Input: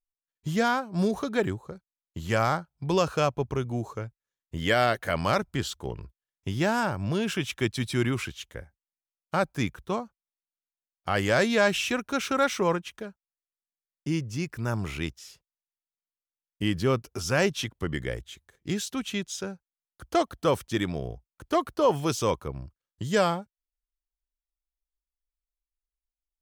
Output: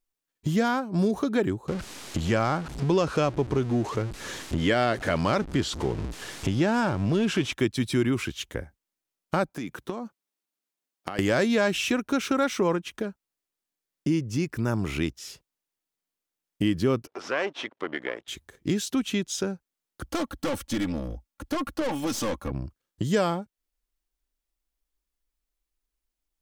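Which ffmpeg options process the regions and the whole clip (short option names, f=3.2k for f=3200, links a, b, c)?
-filter_complex "[0:a]asettb=1/sr,asplit=3[a][b][c];[a]atrim=end=1.684[d];[b]atrim=start=1.68:end=7.53,asetpts=PTS-STARTPTS,afade=t=in:d=0.004:c=qsin,afade=t=out:st=5.846:d=0.004:c=qsin,aeval=exprs='val(0)+0.5*0.02*sgn(val(0))':c=same,lowpass=7.6k[e];[c]atrim=start=7.526[f];[d][e]acrossfade=d=0.004:c1=hsin:c2=qsin[g];[g][f]acrossfade=d=0.004:c1=qsin:c2=hsin,asettb=1/sr,asplit=3[h][i][j];[h]atrim=end=9.494[k];[i]atrim=start=9.49:end=11.19,asetpts=PTS-STARTPTS,afade=t=in:d=0.004:c=qsin,afade=t=out:st=1.696:d=0.004:c=qsin,highpass=160,acompressor=threshold=-36dB:ratio=16:attack=3.2:release=140:knee=1:detection=peak[l];[j]atrim=start=11.186[m];[k][l]acrossfade=d=0.004:c1=hsin:c2=qsin[n];[n][m]acrossfade=d=0.004:c1=qsin:c2=hsin,asettb=1/sr,asplit=3[o][p][q];[o]atrim=end=17.074[r];[p]atrim=start=17.07:end=18.28,asetpts=PTS-STARTPTS,afade=t=in:d=0.004:c=qsin,afade=t=out:st=1.206:d=0.004:c=qsin,aeval=exprs='if(lt(val(0),0),0.251*val(0),val(0))':c=same,acompressor=mode=upward:threshold=-41dB:ratio=2.5:attack=3.2:release=140:knee=2.83:detection=peak,highpass=540,lowpass=2.8k[s];[q]atrim=start=18.276[t];[r][s]acrossfade=d=0.004:c1=hsin:c2=qsin[u];[u][t]acrossfade=d=0.004:c1=qsin:c2=hsin,asettb=1/sr,asplit=3[v][w][x];[v]atrim=end=20.064[y];[w]atrim=start=20.06:end=22.51,asetpts=PTS-STARTPTS,afade=t=in:d=0.004:c=qsin,afade=t=out:st=2.446:d=0.004:c=qsin,equalizer=f=380:t=o:w=0.32:g=-14,aecho=1:1:3.6:0.74,atrim=end_sample=108045,aeval=exprs='(tanh(31.6*val(0)+0.55)-tanh(0.55))/31.6':c=same[z];[x]atrim=start=22.506[aa];[y][z]acrossfade=d=0.004:c1=hsin:c2=qsin[ab];[ab][aa]acrossfade=d=0.004:c1=qsin:c2=hsin,equalizer=f=290:w=1.2:g=7,acompressor=threshold=-36dB:ratio=2,volume=7.5dB"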